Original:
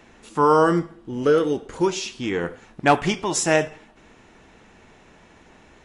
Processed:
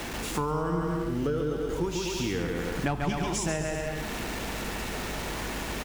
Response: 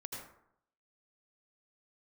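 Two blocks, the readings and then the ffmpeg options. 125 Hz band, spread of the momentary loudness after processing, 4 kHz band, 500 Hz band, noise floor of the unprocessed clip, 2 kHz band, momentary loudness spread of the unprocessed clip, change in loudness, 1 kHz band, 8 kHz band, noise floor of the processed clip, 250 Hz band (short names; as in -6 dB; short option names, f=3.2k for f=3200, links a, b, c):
-0.5 dB, 4 LU, -3.5 dB, -9.5 dB, -52 dBFS, -6.0 dB, 12 LU, -9.0 dB, -10.5 dB, -5.5 dB, -35 dBFS, -5.5 dB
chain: -filter_complex "[0:a]aeval=exprs='val(0)+0.5*0.0266*sgn(val(0))':c=same,aeval=exprs='val(0)+0.00562*(sin(2*PI*50*n/s)+sin(2*PI*2*50*n/s)/2+sin(2*PI*3*50*n/s)/3+sin(2*PI*4*50*n/s)/4+sin(2*PI*5*50*n/s)/5)':c=same,asplit=2[a][b];[b]aecho=0:1:140|245|323.8|382.8|427.1:0.631|0.398|0.251|0.158|0.1[c];[a][c]amix=inputs=2:normalize=0,acrossover=split=150[d][e];[e]acompressor=threshold=-28dB:ratio=10[f];[d][f]amix=inputs=2:normalize=0"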